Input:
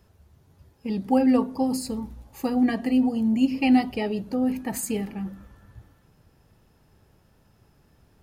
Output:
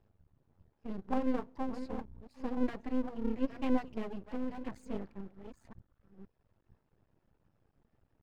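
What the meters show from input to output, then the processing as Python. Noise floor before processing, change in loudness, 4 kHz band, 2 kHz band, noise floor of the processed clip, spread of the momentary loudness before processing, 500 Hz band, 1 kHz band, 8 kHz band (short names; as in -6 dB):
-61 dBFS, -13.5 dB, -18.0 dB, -14.0 dB, -78 dBFS, 13 LU, -10.0 dB, -11.5 dB, under -25 dB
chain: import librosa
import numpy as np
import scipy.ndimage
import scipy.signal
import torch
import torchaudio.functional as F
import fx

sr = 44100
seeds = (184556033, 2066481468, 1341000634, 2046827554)

y = fx.reverse_delay(x, sr, ms=521, wet_db=-9.0)
y = fx.spacing_loss(y, sr, db_at_10k=30)
y = fx.dereverb_blind(y, sr, rt60_s=0.86)
y = np.maximum(y, 0.0)
y = F.gain(torch.from_numpy(y), -6.0).numpy()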